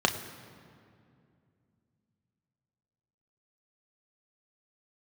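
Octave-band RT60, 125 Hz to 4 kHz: 3.7 s, 3.5 s, 2.6 s, 2.2 s, 2.0 s, 1.5 s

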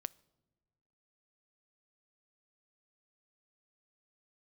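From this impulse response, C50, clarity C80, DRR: 24.5 dB, 27.5 dB, 21.0 dB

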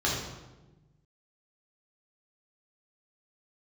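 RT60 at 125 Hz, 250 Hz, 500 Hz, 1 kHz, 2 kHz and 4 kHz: 1.9 s, 1.5 s, 1.3 s, 1.0 s, 0.85 s, 0.80 s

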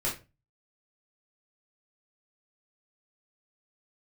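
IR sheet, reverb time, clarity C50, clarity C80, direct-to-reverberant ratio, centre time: 0.30 s, 8.5 dB, 15.5 dB, -6.5 dB, 27 ms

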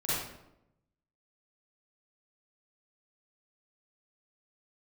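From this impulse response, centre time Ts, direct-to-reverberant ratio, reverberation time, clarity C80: 87 ms, -11.5 dB, 0.85 s, 1.0 dB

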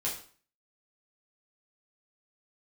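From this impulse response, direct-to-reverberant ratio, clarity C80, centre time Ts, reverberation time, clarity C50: -6.0 dB, 11.0 dB, 29 ms, 0.45 s, 6.5 dB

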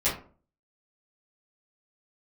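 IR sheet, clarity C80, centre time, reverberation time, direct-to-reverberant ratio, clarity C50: 12.5 dB, 32 ms, 0.40 s, -12.0 dB, 7.0 dB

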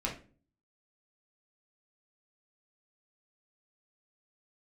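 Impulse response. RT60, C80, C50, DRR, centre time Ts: 0.40 s, 14.0 dB, 8.5 dB, -2.5 dB, 22 ms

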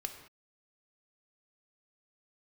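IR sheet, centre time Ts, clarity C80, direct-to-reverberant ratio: 18 ms, 10.0 dB, 5.5 dB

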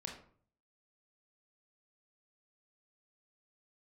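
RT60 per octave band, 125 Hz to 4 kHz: 0.80 s, 0.60 s, 0.55 s, 0.50 s, 0.40 s, 0.30 s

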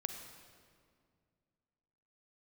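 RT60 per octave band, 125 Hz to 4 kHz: 2.8 s, 2.7 s, 2.3 s, 2.0 s, 1.7 s, 1.5 s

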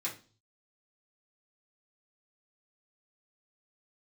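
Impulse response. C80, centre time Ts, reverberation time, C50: 17.5 dB, 19 ms, 0.35 s, 11.0 dB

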